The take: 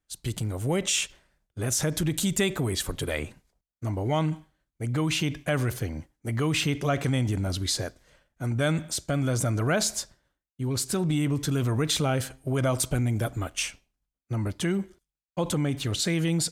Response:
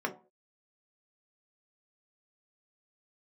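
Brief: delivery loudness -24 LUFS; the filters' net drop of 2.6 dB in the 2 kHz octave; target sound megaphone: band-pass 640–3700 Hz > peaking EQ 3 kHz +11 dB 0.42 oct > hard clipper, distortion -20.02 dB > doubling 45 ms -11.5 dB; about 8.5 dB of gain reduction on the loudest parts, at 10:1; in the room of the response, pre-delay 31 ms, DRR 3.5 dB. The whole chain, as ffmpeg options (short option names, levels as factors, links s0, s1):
-filter_complex "[0:a]equalizer=f=2000:t=o:g=-7.5,acompressor=threshold=0.0316:ratio=10,asplit=2[s0][s1];[1:a]atrim=start_sample=2205,adelay=31[s2];[s1][s2]afir=irnorm=-1:irlink=0,volume=0.316[s3];[s0][s3]amix=inputs=2:normalize=0,highpass=640,lowpass=3700,equalizer=f=3000:t=o:w=0.42:g=11,asoftclip=type=hard:threshold=0.0447,asplit=2[s4][s5];[s5]adelay=45,volume=0.266[s6];[s4][s6]amix=inputs=2:normalize=0,volume=5.96"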